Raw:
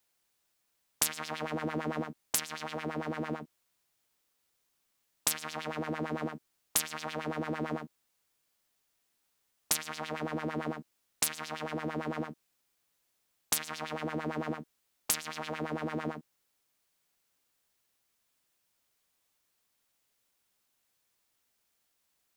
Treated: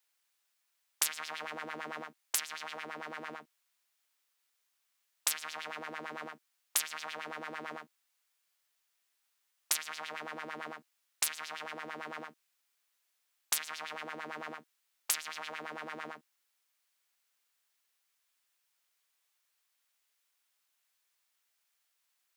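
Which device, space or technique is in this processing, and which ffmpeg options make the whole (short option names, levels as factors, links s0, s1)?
filter by subtraction: -filter_complex "[0:a]asplit=2[s0][s1];[s1]lowpass=1700,volume=-1[s2];[s0][s2]amix=inputs=2:normalize=0,volume=0.794"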